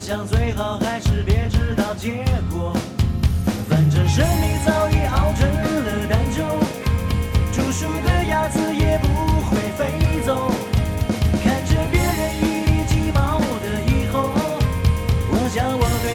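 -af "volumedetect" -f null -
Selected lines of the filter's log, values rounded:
mean_volume: -18.7 dB
max_volume: -5.6 dB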